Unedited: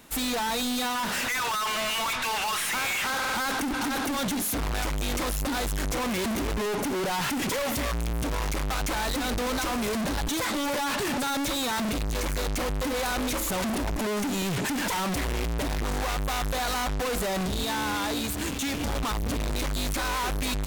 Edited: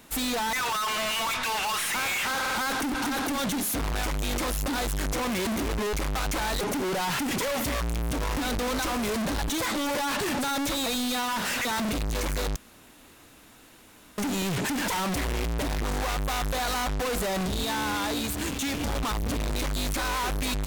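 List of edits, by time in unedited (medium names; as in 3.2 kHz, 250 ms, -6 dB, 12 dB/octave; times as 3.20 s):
0.53–1.32 s: move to 11.65 s
8.48–9.16 s: move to 6.72 s
12.56–14.18 s: room tone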